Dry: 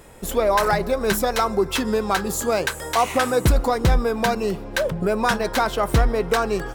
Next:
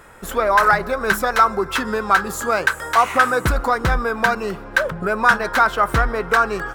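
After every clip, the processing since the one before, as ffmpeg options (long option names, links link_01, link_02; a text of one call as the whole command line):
ffmpeg -i in.wav -af "equalizer=frequency=1400:width_type=o:width=1.1:gain=14,volume=-3dB" out.wav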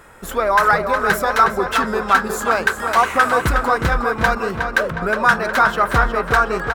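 ffmpeg -i in.wav -filter_complex "[0:a]asplit=2[link_01][link_02];[link_02]adelay=363,lowpass=frequency=4200:poles=1,volume=-6dB,asplit=2[link_03][link_04];[link_04]adelay=363,lowpass=frequency=4200:poles=1,volume=0.55,asplit=2[link_05][link_06];[link_06]adelay=363,lowpass=frequency=4200:poles=1,volume=0.55,asplit=2[link_07][link_08];[link_08]adelay=363,lowpass=frequency=4200:poles=1,volume=0.55,asplit=2[link_09][link_10];[link_10]adelay=363,lowpass=frequency=4200:poles=1,volume=0.55,asplit=2[link_11][link_12];[link_12]adelay=363,lowpass=frequency=4200:poles=1,volume=0.55,asplit=2[link_13][link_14];[link_14]adelay=363,lowpass=frequency=4200:poles=1,volume=0.55[link_15];[link_01][link_03][link_05][link_07][link_09][link_11][link_13][link_15]amix=inputs=8:normalize=0" out.wav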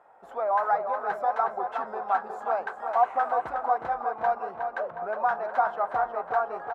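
ffmpeg -i in.wav -af "bandpass=frequency=750:width_type=q:width=5.5:csg=0" out.wav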